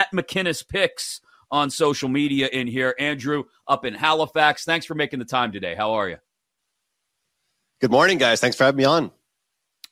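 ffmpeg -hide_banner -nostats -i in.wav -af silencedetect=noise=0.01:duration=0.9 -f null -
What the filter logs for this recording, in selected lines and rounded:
silence_start: 6.16
silence_end: 7.81 | silence_duration: 1.65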